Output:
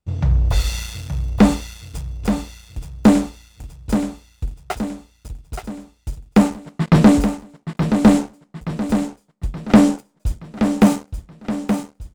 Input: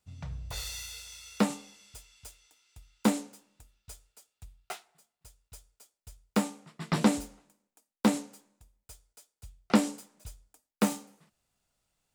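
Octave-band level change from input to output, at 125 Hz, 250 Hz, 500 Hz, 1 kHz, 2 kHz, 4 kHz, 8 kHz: +19.0 dB, +15.5 dB, +13.5 dB, +11.5 dB, +10.5 dB, +8.0 dB, +6.5 dB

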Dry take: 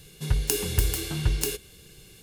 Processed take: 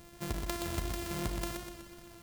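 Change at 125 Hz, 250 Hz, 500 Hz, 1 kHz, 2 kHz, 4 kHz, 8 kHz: -12.0 dB, -3.0 dB, -7.0 dB, +2.5 dB, -6.5 dB, -10.0 dB, -13.0 dB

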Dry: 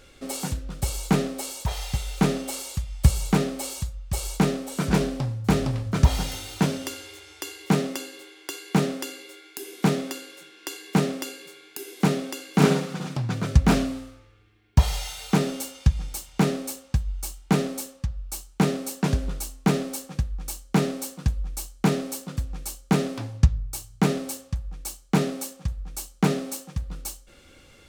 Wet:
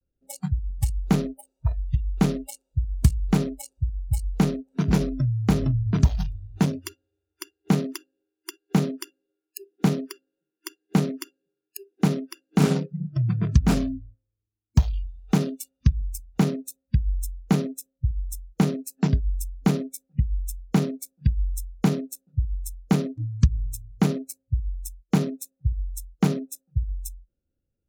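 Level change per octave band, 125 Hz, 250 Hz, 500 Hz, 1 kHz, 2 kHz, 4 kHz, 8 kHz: +1.5 dB, +0.5 dB, -3.5 dB, -5.0 dB, -6.0 dB, -6.0 dB, -5.5 dB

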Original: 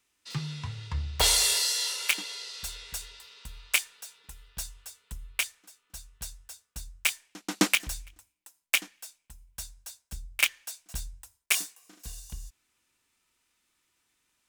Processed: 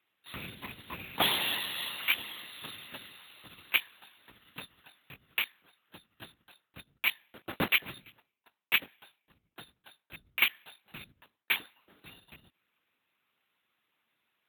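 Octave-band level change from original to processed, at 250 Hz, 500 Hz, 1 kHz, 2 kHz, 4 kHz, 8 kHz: -7.0 dB, -2.5 dB, 0.0 dB, -0.5 dB, -4.0 dB, -18.0 dB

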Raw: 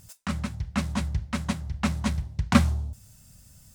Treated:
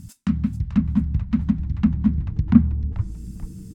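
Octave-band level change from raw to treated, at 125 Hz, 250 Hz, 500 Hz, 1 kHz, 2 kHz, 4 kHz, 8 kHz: +6.0 dB, +8.5 dB, no reading, -10.0 dB, under -10 dB, under -10 dB, under -10 dB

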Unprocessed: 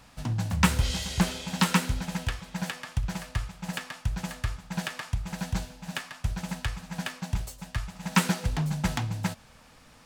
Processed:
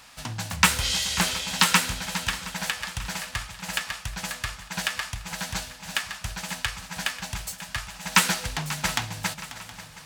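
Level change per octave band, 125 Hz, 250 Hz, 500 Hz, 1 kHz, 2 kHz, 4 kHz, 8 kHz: -6.0 dB, -5.5 dB, 0.0 dB, +4.5 dB, +7.5 dB, +8.5 dB, +9.0 dB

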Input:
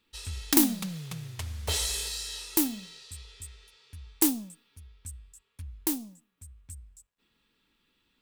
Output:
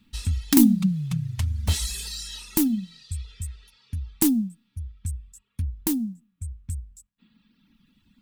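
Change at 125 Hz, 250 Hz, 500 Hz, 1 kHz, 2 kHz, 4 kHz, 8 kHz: +12.0 dB, +9.0 dB, +0.5 dB, -1.0 dB, -0.5 dB, 0.0 dB, 0.0 dB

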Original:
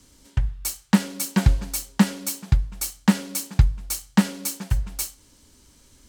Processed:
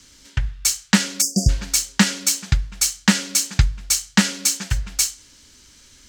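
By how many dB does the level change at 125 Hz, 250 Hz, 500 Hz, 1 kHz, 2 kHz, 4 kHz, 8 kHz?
0.0 dB, 0.0 dB, 0.0 dB, +2.0 dB, +9.0 dB, +11.5 dB, +11.0 dB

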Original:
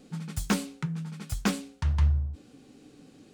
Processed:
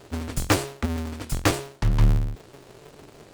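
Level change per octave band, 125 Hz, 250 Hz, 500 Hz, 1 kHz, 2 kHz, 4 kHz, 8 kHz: +4.0 dB, +3.0 dB, +11.0 dB, +8.5 dB, +7.5 dB, +7.0 dB, +6.5 dB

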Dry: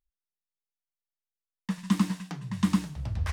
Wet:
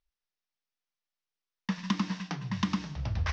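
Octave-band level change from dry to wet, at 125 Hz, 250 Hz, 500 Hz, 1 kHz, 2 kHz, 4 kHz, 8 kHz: -2.5 dB, -5.0 dB, 0.0 dB, +1.0 dB, +2.5 dB, +2.5 dB, -4.5 dB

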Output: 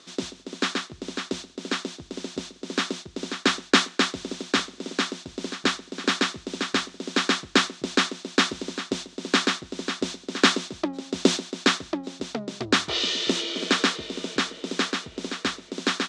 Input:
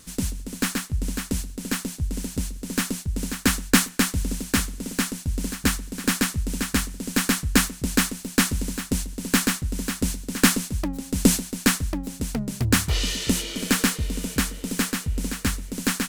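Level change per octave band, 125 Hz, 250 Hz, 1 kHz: -12.5 dB, -3.5 dB, +3.5 dB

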